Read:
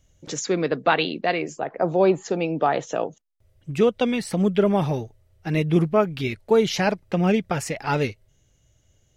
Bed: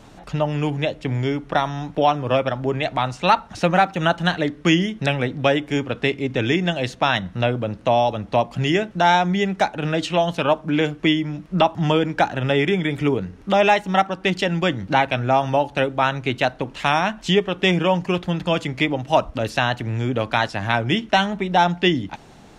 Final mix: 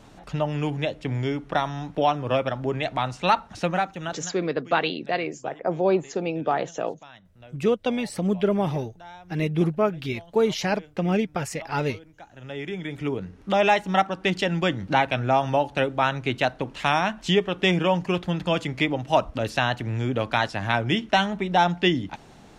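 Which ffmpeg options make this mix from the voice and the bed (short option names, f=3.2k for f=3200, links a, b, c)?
-filter_complex "[0:a]adelay=3850,volume=-3dB[a];[1:a]volume=21dB,afade=t=out:st=3.42:d=0.96:silence=0.0630957,afade=t=in:st=12.26:d=1.5:silence=0.0562341[b];[a][b]amix=inputs=2:normalize=0"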